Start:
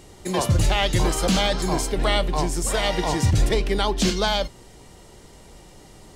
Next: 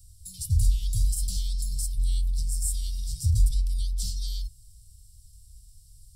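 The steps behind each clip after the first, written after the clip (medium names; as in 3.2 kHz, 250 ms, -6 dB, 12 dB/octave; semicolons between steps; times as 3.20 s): inverse Chebyshev band-stop 340–1600 Hz, stop band 70 dB; peaking EQ 6.5 kHz -14 dB 0.27 oct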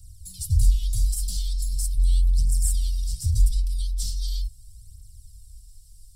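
phaser 0.4 Hz, delay 4.1 ms, feedback 56%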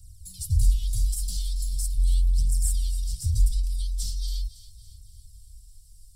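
thinning echo 279 ms, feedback 51%, level -14 dB; trim -2 dB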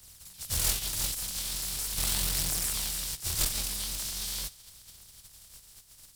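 spectral contrast reduction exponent 0.33; one-sided clip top -24 dBFS; trim -7 dB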